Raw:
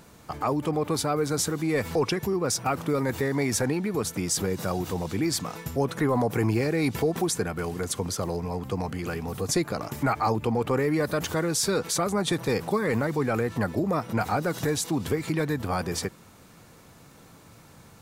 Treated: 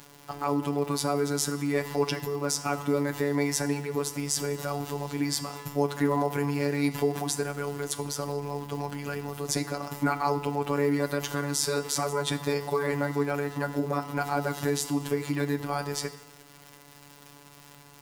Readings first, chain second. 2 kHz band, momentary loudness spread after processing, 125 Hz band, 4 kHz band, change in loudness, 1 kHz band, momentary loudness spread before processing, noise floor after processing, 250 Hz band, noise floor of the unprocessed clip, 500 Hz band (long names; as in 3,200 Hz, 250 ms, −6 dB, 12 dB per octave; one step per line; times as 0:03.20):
−2.0 dB, 7 LU, −3.5 dB, −1.5 dB, −2.0 dB, −1.5 dB, 6 LU, −52 dBFS, −2.0 dB, −52 dBFS, −2.0 dB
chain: low-shelf EQ 75 Hz −10.5 dB
surface crackle 270 per second −35 dBFS
phases set to zero 143 Hz
feedback delay network reverb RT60 0.93 s, high-frequency decay 0.85×, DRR 10.5 dB